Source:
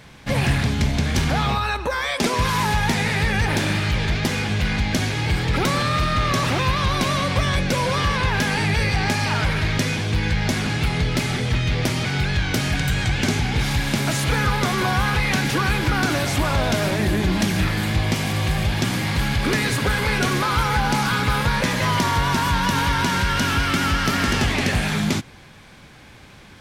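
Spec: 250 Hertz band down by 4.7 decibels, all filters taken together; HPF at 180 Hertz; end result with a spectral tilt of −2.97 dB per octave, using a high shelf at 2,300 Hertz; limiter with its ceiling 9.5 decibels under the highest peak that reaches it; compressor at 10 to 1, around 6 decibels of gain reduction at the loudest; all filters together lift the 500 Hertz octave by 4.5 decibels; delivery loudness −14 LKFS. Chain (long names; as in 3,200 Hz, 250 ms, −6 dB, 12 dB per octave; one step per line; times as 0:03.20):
high-pass filter 180 Hz
parametric band 250 Hz −6 dB
parametric band 500 Hz +7 dB
high-shelf EQ 2,300 Hz +4 dB
downward compressor 10 to 1, threshold −22 dBFS
level +12.5 dB
brickwall limiter −5 dBFS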